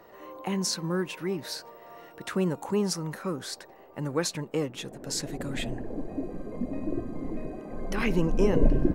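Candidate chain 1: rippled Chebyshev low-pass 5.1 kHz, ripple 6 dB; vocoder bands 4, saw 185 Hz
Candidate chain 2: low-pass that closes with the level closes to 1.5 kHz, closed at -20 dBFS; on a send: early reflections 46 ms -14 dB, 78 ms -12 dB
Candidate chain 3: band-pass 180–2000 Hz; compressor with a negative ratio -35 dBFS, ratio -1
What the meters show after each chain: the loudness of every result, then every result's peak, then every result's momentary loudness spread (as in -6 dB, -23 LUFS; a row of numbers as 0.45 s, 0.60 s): -37.5 LUFS, -31.0 LUFS, -36.5 LUFS; -19.0 dBFS, -7.5 dBFS, -19.0 dBFS; 19 LU, 13 LU, 7 LU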